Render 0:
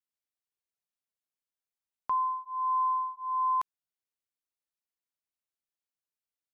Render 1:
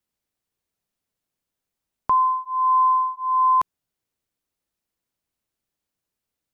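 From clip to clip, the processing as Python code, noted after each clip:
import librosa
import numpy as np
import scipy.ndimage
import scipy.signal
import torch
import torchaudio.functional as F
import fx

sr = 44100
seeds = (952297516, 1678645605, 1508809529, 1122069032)

y = fx.low_shelf(x, sr, hz=490.0, db=11.0)
y = y * librosa.db_to_amplitude(8.0)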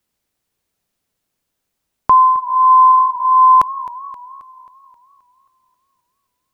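y = fx.echo_warbled(x, sr, ms=266, feedback_pct=54, rate_hz=2.8, cents=104, wet_db=-17.5)
y = y * librosa.db_to_amplitude(9.0)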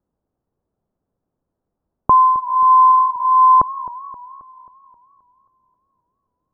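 y = scipy.ndimage.gaussian_filter1d(x, 8.8, mode='constant')
y = y * librosa.db_to_amplitude(5.5)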